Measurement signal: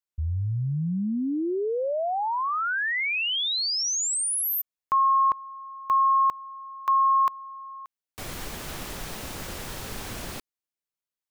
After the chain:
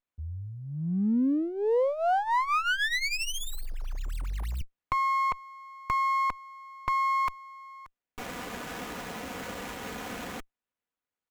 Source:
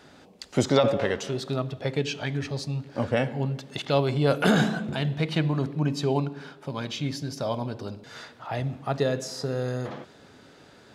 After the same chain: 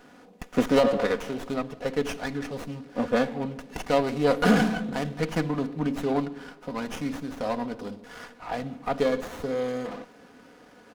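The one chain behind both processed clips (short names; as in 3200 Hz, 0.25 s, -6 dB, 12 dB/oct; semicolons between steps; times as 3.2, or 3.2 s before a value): HPF 61 Hz 12 dB/oct; low shelf 93 Hz -11.5 dB; comb 4.1 ms, depth 64%; running maximum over 9 samples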